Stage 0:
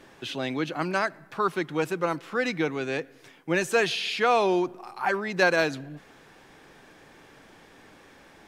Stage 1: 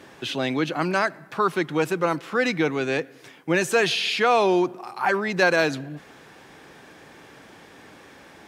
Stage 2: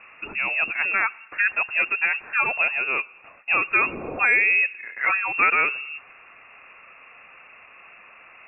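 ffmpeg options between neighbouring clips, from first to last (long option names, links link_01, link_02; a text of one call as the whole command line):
ffmpeg -i in.wav -filter_complex "[0:a]highpass=61,asplit=2[link_01][link_02];[link_02]alimiter=limit=-19dB:level=0:latency=1:release=28,volume=-2dB[link_03];[link_01][link_03]amix=inputs=2:normalize=0" out.wav
ffmpeg -i in.wav -af "lowpass=frequency=2500:width_type=q:width=0.5098,lowpass=frequency=2500:width_type=q:width=0.6013,lowpass=frequency=2500:width_type=q:width=0.9,lowpass=frequency=2500:width_type=q:width=2.563,afreqshift=-2900" out.wav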